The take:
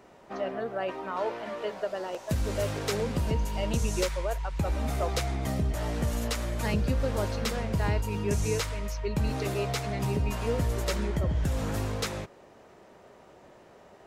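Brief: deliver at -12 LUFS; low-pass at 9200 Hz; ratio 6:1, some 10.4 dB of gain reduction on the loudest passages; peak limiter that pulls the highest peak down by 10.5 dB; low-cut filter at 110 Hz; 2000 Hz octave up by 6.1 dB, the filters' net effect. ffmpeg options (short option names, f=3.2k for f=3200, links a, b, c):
-af "highpass=110,lowpass=9.2k,equalizer=f=2k:t=o:g=7.5,acompressor=threshold=-36dB:ratio=6,volume=29.5dB,alimiter=limit=-2.5dB:level=0:latency=1"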